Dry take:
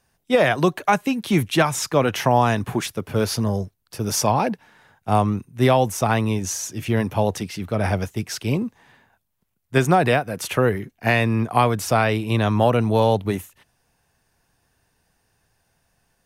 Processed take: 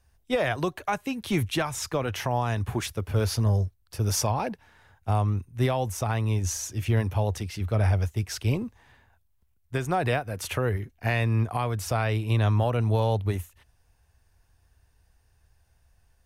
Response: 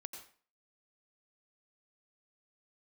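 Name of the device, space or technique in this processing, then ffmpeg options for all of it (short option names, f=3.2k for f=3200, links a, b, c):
car stereo with a boomy subwoofer: -af "lowshelf=f=110:t=q:w=1.5:g=13.5,alimiter=limit=-10.5dB:level=0:latency=1:release=401,volume=-4.5dB"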